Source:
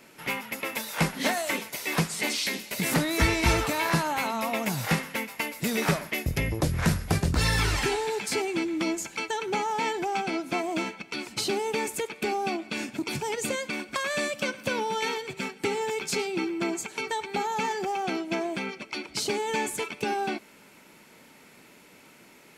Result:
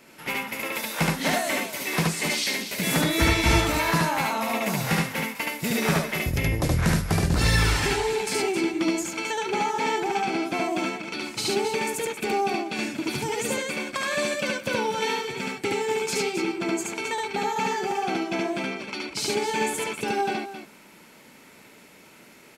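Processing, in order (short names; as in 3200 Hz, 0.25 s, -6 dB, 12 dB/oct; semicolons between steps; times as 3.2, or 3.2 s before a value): loudspeakers at several distances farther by 25 m -1 dB, 92 m -9 dB; 2.83–3.67 whine 3400 Hz -33 dBFS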